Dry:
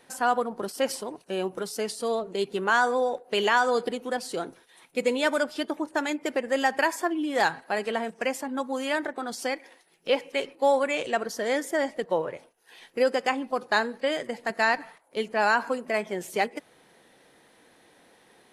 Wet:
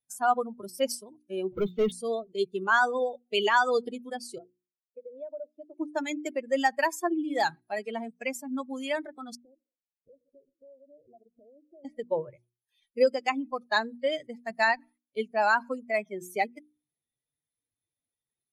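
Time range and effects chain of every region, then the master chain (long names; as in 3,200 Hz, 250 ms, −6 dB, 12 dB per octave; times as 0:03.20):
0:01.52–0:01.92: Butterworth low-pass 3,600 Hz 72 dB per octave + leveller curve on the samples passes 3
0:04.38–0:05.78: resonant band-pass 500 Hz, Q 2.6 + downward compressor 20 to 1, threshold −29 dBFS
0:09.35–0:11.85: Chebyshev low-pass filter 700 Hz, order 5 + downward compressor, threshold −38 dBFS
whole clip: spectral dynamics exaggerated over time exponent 2; low-shelf EQ 66 Hz +9 dB; mains-hum notches 60/120/180/240/300/360 Hz; level +2.5 dB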